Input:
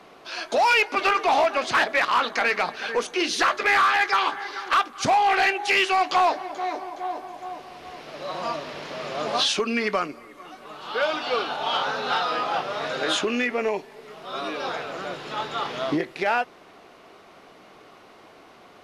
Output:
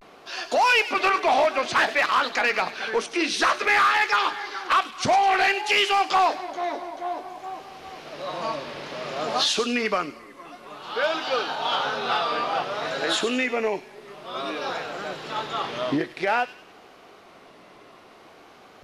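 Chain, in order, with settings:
delay with a high-pass on its return 99 ms, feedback 41%, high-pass 2,900 Hz, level −9 dB
pitch vibrato 0.55 Hz 86 cents

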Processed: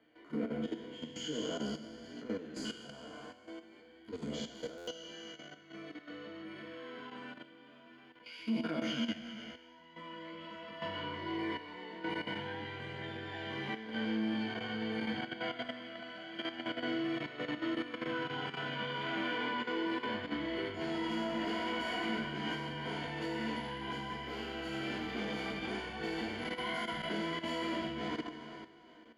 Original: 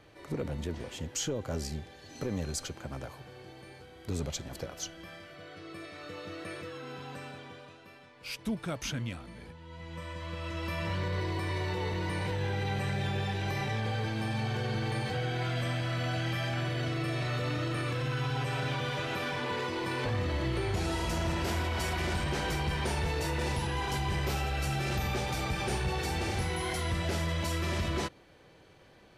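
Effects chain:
peak hold with a decay on every bin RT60 2.30 s
EQ curve with evenly spaced ripples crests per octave 1.8, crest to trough 11 dB
multi-voice chorus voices 2, 0.23 Hz, delay 16 ms, depth 3.8 ms
output level in coarse steps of 11 dB
three-way crossover with the lows and the highs turned down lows −18 dB, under 210 Hz, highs −18 dB, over 4,100 Hz
hollow resonant body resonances 240/1,800/2,900 Hz, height 12 dB, ringing for 40 ms
buffer that repeats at 0:04.77, samples 512, times 8
level −3.5 dB

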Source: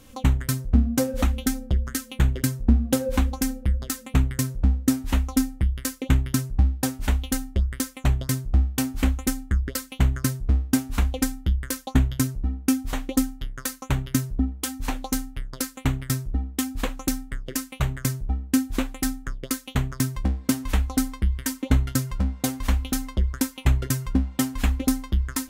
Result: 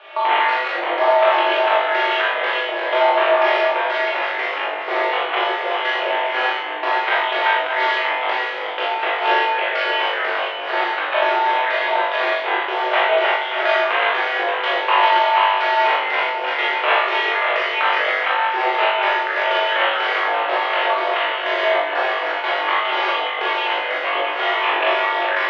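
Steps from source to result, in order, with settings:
feedback delay that plays each chunk backwards 291 ms, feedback 49%, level −2 dB
in parallel at −1 dB: compressor whose output falls as the input rises −22 dBFS
on the sum: soft clipping −16 dBFS, distortion −11 dB
on a send: flutter between parallel walls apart 3.5 metres, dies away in 0.44 s
on the sum: four-comb reverb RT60 0.67 s, combs from 26 ms, DRR −4.5 dB
single-sideband voice off tune +110 Hz 480–3,000 Hz
level +7 dB

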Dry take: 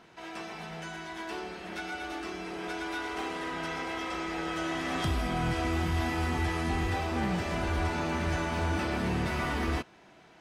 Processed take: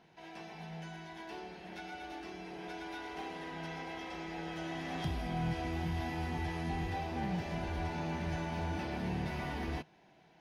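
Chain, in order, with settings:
thirty-one-band graphic EQ 160 Hz +8 dB, 800 Hz +5 dB, 1,250 Hz −9 dB, 8,000 Hz −11 dB, 12,500 Hz −3 dB
level −8 dB

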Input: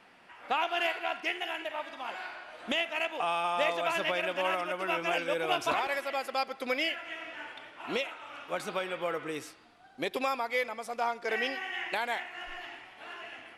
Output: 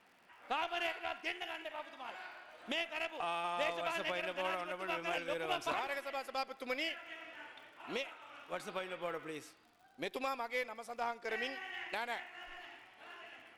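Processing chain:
surface crackle 79 per second −48 dBFS
harmonic generator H 2 −18 dB, 4 −22 dB, 7 −33 dB, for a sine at −14.5 dBFS
level −7 dB

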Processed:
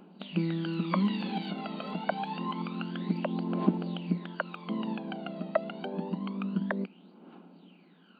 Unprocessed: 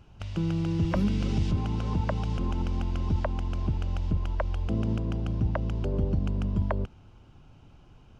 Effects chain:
brick-wall band-pass 170–4,700 Hz
phase shifter 0.27 Hz, delay 1.6 ms, feedback 72%

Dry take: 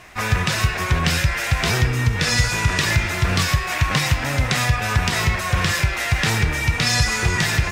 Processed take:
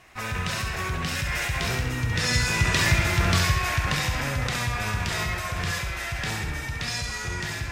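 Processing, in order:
source passing by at 0:03.01, 6 m/s, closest 3.4 metres
in parallel at −2 dB: compressor whose output falls as the input rises −34 dBFS
on the sum: flutter between parallel walls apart 11.5 metres, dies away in 0.66 s
level −3 dB

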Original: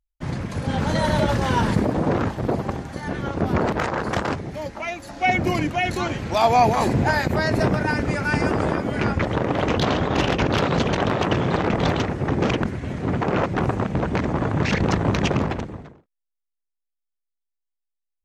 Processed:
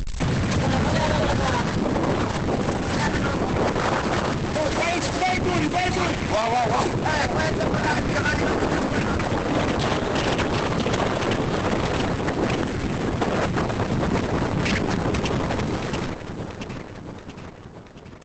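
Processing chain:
converter with a step at zero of −25.5 dBFS
repeating echo 680 ms, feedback 60%, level −14 dB
soft clipping −17.5 dBFS, distortion −12 dB
downward compressor 6 to 1, threshold −25 dBFS, peak gain reduction 6 dB
level +6.5 dB
Opus 10 kbit/s 48,000 Hz

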